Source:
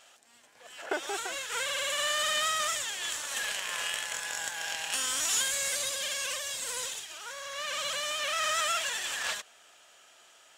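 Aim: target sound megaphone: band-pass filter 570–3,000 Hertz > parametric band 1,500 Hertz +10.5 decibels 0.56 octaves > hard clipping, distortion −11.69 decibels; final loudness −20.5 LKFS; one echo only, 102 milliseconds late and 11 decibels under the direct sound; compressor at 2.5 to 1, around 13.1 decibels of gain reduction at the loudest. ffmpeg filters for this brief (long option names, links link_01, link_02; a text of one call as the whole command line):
ffmpeg -i in.wav -af "acompressor=threshold=-46dB:ratio=2.5,highpass=570,lowpass=3000,equalizer=frequency=1500:width_type=o:width=0.56:gain=10.5,aecho=1:1:102:0.282,asoftclip=type=hard:threshold=-39dB,volume=21.5dB" out.wav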